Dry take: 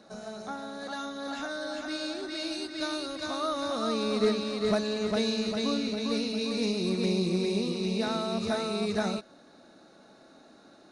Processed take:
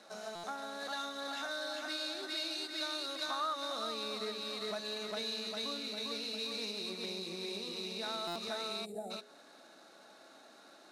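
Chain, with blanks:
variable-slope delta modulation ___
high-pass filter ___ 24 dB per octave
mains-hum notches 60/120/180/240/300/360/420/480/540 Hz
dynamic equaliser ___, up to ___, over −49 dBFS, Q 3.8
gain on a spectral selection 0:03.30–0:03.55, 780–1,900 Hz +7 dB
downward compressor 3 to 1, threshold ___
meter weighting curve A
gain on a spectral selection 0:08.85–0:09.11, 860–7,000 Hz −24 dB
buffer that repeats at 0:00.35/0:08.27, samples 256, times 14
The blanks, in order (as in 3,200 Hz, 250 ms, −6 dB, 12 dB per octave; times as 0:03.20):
64 kbit/s, 44 Hz, 3,800 Hz, +5 dB, −36 dBFS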